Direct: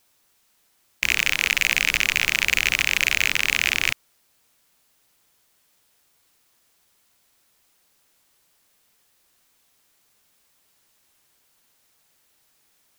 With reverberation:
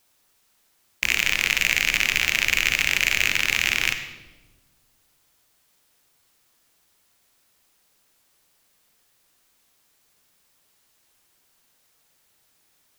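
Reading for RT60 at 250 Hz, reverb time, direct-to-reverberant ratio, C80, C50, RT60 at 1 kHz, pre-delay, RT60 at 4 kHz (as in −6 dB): 1.8 s, 1.2 s, 7.5 dB, 10.5 dB, 8.5 dB, 1.1 s, 40 ms, 0.90 s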